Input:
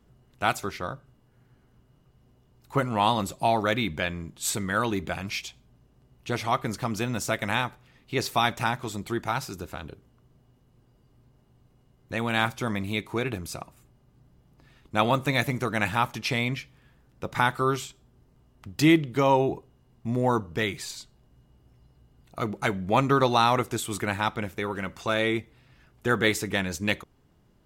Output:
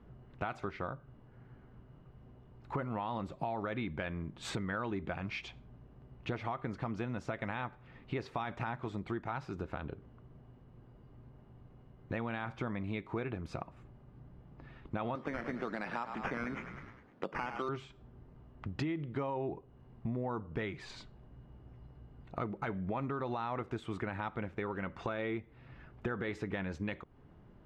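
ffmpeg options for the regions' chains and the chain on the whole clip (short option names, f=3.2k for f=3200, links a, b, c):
-filter_complex "[0:a]asettb=1/sr,asplit=3[a][b][c];[a]atrim=end=15.154[d];[b]atrim=start=15.15:end=17.69,asetpts=PTS-STARTPTS,afade=t=in:d=0.004:c=qsin,afade=t=out:st=2.536:d=0.004:c=qsin,highpass=f=190:w=0.5412,highpass=f=190:w=1.3066,acrusher=samples=9:mix=1:aa=0.000001:lfo=1:lforange=5.4:lforate=1,asplit=6[e][f][g][h][i][j];[f]adelay=102,afreqshift=-36,volume=-14dB[k];[g]adelay=204,afreqshift=-72,volume=-19.5dB[l];[h]adelay=306,afreqshift=-108,volume=-25dB[m];[i]adelay=408,afreqshift=-144,volume=-30.5dB[n];[j]adelay=510,afreqshift=-180,volume=-36.1dB[o];[e][k][l][m][n][o]amix=inputs=6:normalize=0,atrim=end_sample=112014[p];[c]atrim=start=17.686[q];[d][p]acrossfade=d=0.004:c1=hsin:c2=qsin[r];[r][q]acrossfade=d=0.004:c1=qsin:c2=hsin,lowpass=2k,alimiter=limit=-17.5dB:level=0:latency=1:release=54,acompressor=threshold=-41dB:ratio=4,volume=4.5dB"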